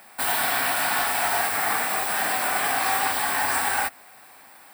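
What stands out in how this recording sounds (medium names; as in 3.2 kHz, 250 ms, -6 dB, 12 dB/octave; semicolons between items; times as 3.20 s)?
noise floor -49 dBFS; spectral tilt -0.5 dB/octave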